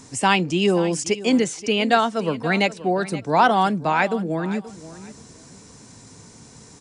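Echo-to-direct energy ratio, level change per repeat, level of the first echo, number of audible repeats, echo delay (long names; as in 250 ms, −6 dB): −16.0 dB, −13.5 dB, −16.0 dB, 2, 528 ms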